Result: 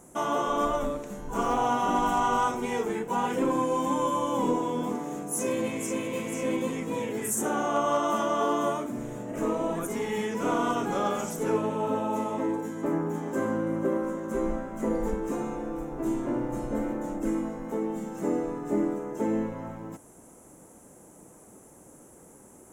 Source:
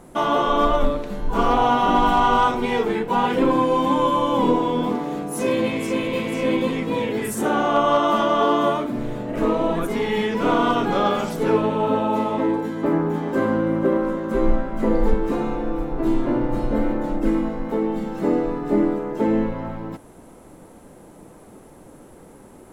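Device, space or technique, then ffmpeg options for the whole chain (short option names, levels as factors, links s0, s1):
budget condenser microphone: -af "highpass=f=61:p=1,highshelf=f=5400:t=q:w=3:g=7.5,volume=0.422"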